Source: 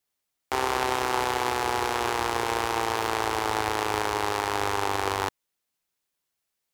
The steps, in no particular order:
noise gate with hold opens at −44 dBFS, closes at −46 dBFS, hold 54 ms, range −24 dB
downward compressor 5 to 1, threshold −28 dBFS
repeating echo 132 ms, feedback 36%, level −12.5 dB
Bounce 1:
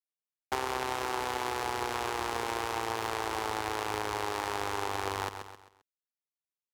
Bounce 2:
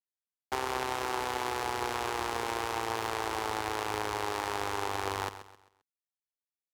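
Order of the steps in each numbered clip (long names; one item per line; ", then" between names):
noise gate with hold, then repeating echo, then downward compressor
downward compressor, then noise gate with hold, then repeating echo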